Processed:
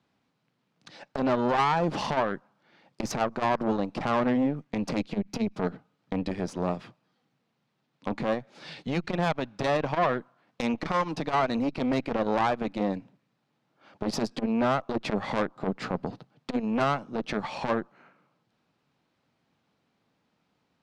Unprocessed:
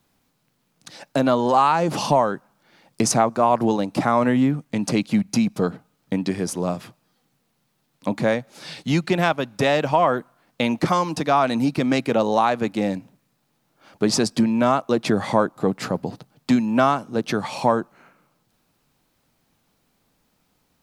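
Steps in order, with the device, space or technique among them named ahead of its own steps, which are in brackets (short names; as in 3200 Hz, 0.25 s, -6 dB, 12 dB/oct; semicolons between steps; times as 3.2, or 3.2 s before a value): valve radio (BPF 100–4000 Hz; tube stage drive 17 dB, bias 0.75; core saturation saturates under 360 Hz)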